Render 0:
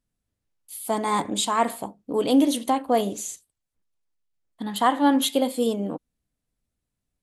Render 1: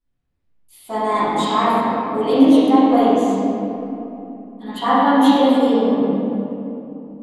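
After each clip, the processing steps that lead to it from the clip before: reverb RT60 3.0 s, pre-delay 3 ms, DRR -17.5 dB; gain -11 dB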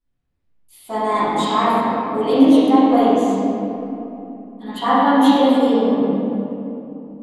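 nothing audible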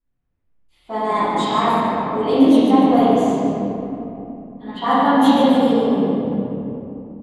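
frequency-shifting echo 0.146 s, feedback 47%, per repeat -35 Hz, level -9 dB; low-pass opened by the level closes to 2600 Hz, open at -10.5 dBFS; gain -1 dB

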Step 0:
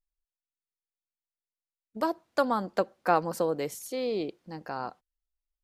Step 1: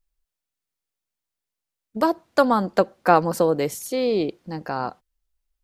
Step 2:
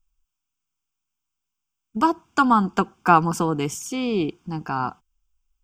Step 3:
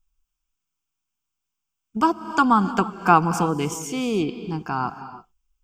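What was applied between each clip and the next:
low shelf 230 Hz +4.5 dB; gain +7.5 dB
fixed phaser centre 2800 Hz, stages 8; gain +5 dB
non-linear reverb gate 0.34 s rising, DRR 11.5 dB

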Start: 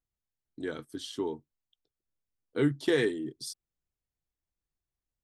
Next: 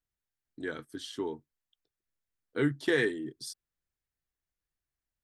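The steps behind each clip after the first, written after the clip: bell 1700 Hz +6.5 dB 0.73 oct; gain -2 dB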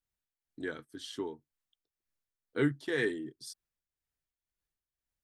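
tremolo triangle 2 Hz, depth 65%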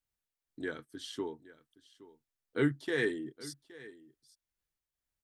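echo 0.819 s -19 dB

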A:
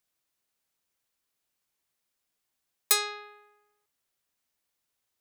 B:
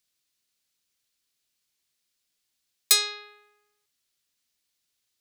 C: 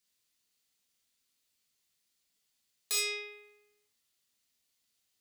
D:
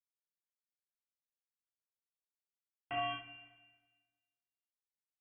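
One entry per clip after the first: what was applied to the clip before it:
EQ curve 270 Hz 0 dB, 860 Hz -6 dB, 4300 Hz +8 dB, 15000 Hz +1 dB
compressor, threshold -21 dBFS, peak gain reduction 7.5 dB; soft clip -23 dBFS, distortion -7 dB; non-linear reverb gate 90 ms flat, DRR -3 dB; gain -5 dB
sample gate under -35 dBFS; inverted band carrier 3200 Hz; Schroeder reverb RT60 1.4 s, combs from 28 ms, DRR 8.5 dB; gain +2 dB

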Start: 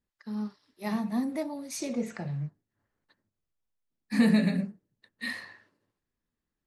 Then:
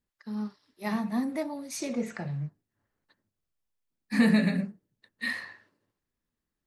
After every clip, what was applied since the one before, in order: dynamic EQ 1600 Hz, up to +4 dB, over -46 dBFS, Q 0.88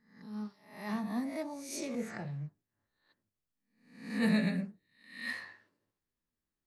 spectral swells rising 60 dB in 0.52 s; attack slew limiter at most 100 dB/s; gain -6.5 dB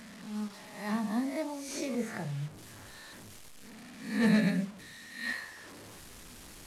delta modulation 64 kbps, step -46.5 dBFS; gain +3.5 dB

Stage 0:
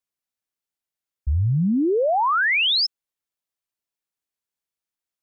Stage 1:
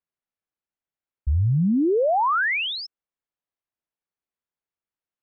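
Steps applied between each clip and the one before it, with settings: Bessel low-pass 1900 Hz, order 2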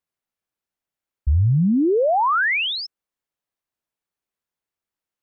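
vocal rider; gain +3.5 dB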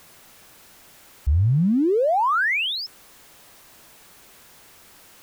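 zero-crossing step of -39.5 dBFS; gain -2 dB

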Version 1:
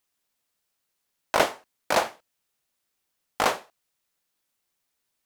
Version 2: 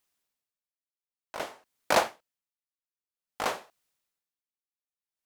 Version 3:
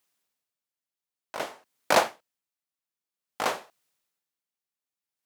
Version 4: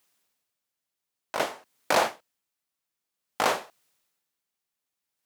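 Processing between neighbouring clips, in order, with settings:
dB-linear tremolo 0.53 Hz, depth 28 dB
HPF 97 Hz; gain +2.5 dB
limiter -16 dBFS, peak gain reduction 9 dB; gain +5.5 dB

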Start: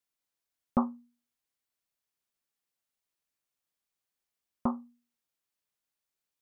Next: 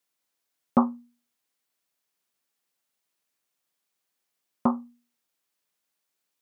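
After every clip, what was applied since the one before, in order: HPF 150 Hz; gain +7 dB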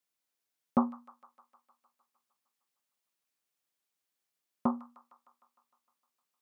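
thin delay 0.153 s, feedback 67%, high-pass 1700 Hz, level -10.5 dB; gain -6 dB

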